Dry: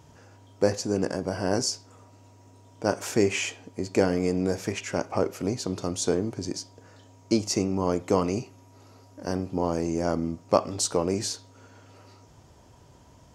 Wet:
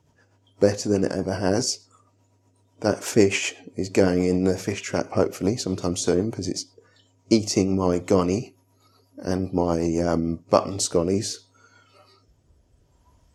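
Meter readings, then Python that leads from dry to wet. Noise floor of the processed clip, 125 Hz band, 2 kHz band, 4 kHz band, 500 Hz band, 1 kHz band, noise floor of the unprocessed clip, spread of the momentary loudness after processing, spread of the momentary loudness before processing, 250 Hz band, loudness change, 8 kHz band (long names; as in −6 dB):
−64 dBFS, +4.5 dB, +3.0 dB, +3.0 dB, +4.0 dB, +2.0 dB, −54 dBFS, 9 LU, 8 LU, +4.5 dB, +4.0 dB, +2.5 dB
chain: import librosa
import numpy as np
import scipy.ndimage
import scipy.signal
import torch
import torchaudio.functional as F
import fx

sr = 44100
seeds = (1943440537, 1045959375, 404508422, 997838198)

y = fx.noise_reduce_blind(x, sr, reduce_db=14)
y = fx.rotary_switch(y, sr, hz=8.0, then_hz=0.7, switch_at_s=9.84)
y = y * librosa.db_to_amplitude(6.0)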